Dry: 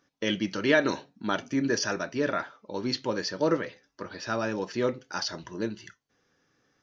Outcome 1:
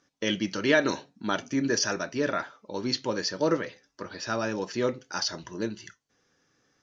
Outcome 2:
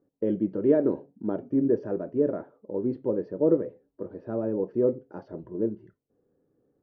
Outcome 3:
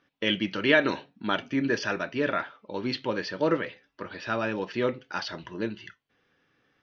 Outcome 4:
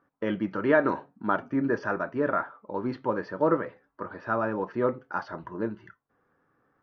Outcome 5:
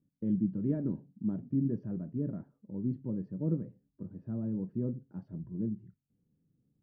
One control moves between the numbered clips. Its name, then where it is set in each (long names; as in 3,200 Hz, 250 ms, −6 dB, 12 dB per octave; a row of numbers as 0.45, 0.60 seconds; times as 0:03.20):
low-pass with resonance, frequency: 7,700, 450, 3,000, 1,200, 180 Hertz